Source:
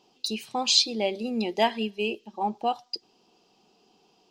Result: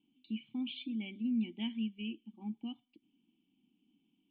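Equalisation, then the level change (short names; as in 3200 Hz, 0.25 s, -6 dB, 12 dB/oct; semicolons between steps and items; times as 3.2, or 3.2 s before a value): vocal tract filter i; band shelf 510 Hz -14 dB 1.1 oct; +1.0 dB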